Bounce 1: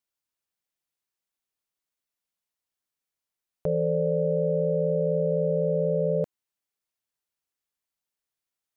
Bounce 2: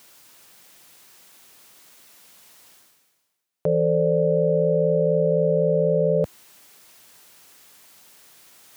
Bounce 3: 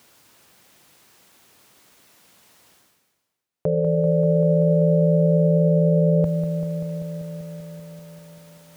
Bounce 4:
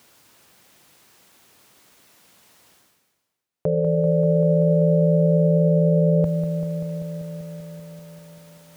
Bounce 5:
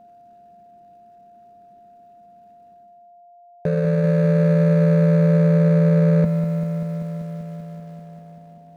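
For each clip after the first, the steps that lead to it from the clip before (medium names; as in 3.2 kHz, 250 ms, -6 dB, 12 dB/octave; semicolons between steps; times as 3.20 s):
high-pass 110 Hz 12 dB/octave; reverse; upward compressor, threshold -31 dBFS; reverse; trim +5 dB
tilt EQ -1.5 dB/octave; peak limiter -13 dBFS, peak gain reduction 4 dB; bit-crushed delay 194 ms, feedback 80%, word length 9-bit, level -10 dB
no audible change
median filter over 41 samples; peaking EQ 210 Hz +12.5 dB 0.38 oct; whistle 700 Hz -46 dBFS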